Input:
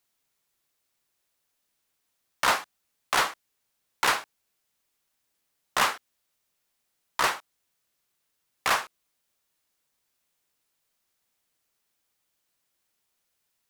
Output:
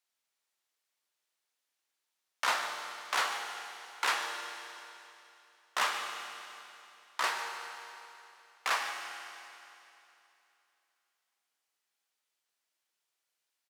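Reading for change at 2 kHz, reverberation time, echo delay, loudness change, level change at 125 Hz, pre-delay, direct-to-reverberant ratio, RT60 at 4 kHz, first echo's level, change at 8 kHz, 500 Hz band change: -4.5 dB, 2.9 s, 0.148 s, -8.0 dB, under -20 dB, 9 ms, 2.5 dB, 2.9 s, -14.0 dB, -6.0 dB, -8.0 dB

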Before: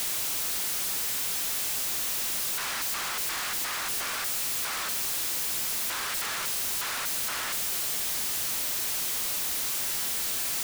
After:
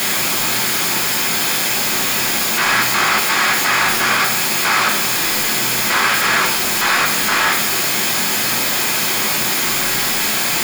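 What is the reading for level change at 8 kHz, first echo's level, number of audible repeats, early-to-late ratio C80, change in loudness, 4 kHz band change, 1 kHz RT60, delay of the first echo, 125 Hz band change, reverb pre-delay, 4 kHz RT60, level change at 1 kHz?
+10.5 dB, none, none, 11.0 dB, +13.0 dB, +14.5 dB, 0.60 s, none, +19.5 dB, 3 ms, 0.60 s, +19.0 dB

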